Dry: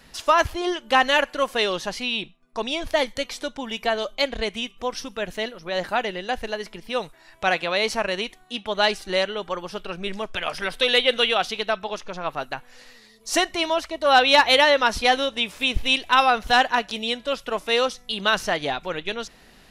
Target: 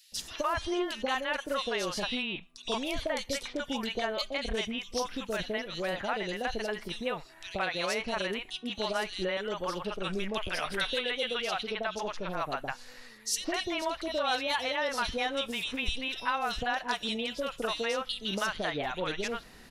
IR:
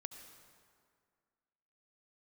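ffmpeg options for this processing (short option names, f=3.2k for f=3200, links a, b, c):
-filter_complex "[0:a]acompressor=threshold=-26dB:ratio=6,acrossover=split=660|3000[a][b][c];[a]adelay=120[d];[b]adelay=160[e];[d][e][c]amix=inputs=3:normalize=0"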